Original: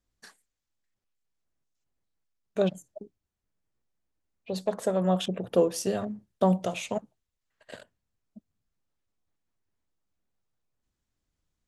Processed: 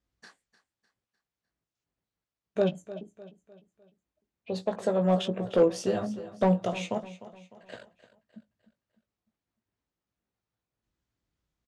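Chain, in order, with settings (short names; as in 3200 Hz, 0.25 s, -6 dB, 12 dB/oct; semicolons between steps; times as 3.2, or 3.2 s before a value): HPF 44 Hz; hard clip -15.5 dBFS, distortion -20 dB; air absorption 80 m; doubler 18 ms -8 dB; feedback echo 0.302 s, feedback 44%, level -15.5 dB; on a send at -21 dB: reverb RT60 0.25 s, pre-delay 6 ms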